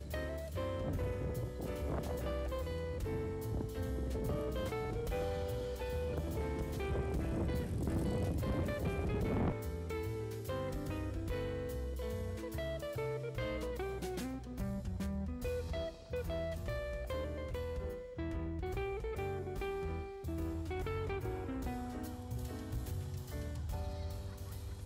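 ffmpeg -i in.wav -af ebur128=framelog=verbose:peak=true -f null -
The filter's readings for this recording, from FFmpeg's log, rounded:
Integrated loudness:
  I:         -39.8 LUFS
  Threshold: -49.8 LUFS
Loudness range:
  LRA:         3.8 LU
  Threshold: -59.7 LUFS
  LRA low:   -41.2 LUFS
  LRA high:  -37.4 LUFS
True peak:
  Peak:      -29.6 dBFS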